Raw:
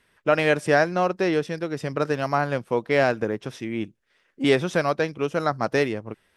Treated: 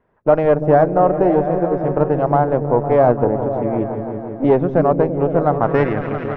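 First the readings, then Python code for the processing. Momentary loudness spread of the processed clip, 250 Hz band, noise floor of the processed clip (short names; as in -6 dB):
7 LU, +8.0 dB, -29 dBFS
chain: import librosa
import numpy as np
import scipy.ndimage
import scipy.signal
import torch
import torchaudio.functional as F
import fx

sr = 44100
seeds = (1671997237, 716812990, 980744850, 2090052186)

y = fx.cheby_harmonics(x, sr, harmonics=(8,), levels_db=(-21,), full_scale_db=-5.0)
y = fx.echo_opening(y, sr, ms=169, hz=200, octaves=1, feedback_pct=70, wet_db=-3)
y = fx.filter_sweep_lowpass(y, sr, from_hz=800.0, to_hz=2200.0, start_s=5.51, end_s=6.12, q=1.6)
y = y * 10.0 ** (4.0 / 20.0)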